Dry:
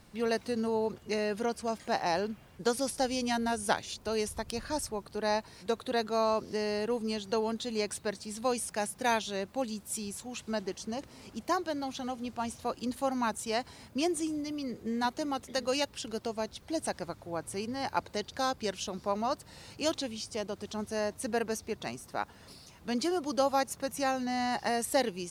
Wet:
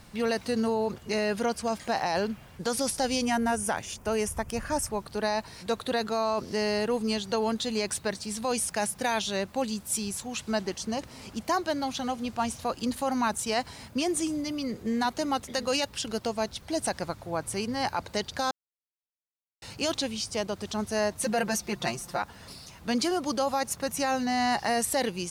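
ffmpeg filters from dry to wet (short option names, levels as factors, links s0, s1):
-filter_complex "[0:a]asettb=1/sr,asplit=3[s0][s1][s2];[s0]atrim=end=3.254[s3];[s1]atrim=start=3.25:end=4.9,asetpts=PTS-STARTPTS,afade=t=in:d=0.004:c=qsin,afade=t=out:st=1.646:d=0.004:c=qsin,equalizer=f=4100:w=2.8:g=-14.5[s4];[s2]atrim=start=4.896[s5];[s3][s4]acrossfade=d=0.004:c1=hsin:c2=qsin[s6];[s6][s5]acrossfade=d=0.004:c1=qsin:c2=hsin,asettb=1/sr,asplit=3[s7][s8][s9];[s7]atrim=end=21.204[s10];[s8]atrim=start=21.2:end=22.22,asetpts=PTS-STARTPTS,afade=t=in:d=0.004:c=qsin,afade=t=out:st=1.016:d=0.004:c=qsin,aecho=1:1:5.7:0.83,atrim=end_sample=44982[s11];[s9]atrim=start=22.216[s12];[s10][s11]acrossfade=d=0.004:c1=hsin:c2=qsin[s13];[s13][s12]acrossfade=d=0.004:c1=qsin:c2=hsin,asplit=3[s14][s15][s16];[s14]atrim=end=18.51,asetpts=PTS-STARTPTS,afade=t=out:st=18.506:d=0.004:c=hsin[s17];[s15]atrim=start=18.51:end=19.62,asetpts=PTS-STARTPTS,volume=0[s18];[s16]atrim=start=19.62,asetpts=PTS-STARTPTS,afade=t=in:d=0.004:c=hsin[s19];[s17][s18][s19]concat=n=3:v=0:a=1,alimiter=limit=0.0668:level=0:latency=1:release=16,equalizer=f=360:t=o:w=1.2:g=-4,volume=2.24"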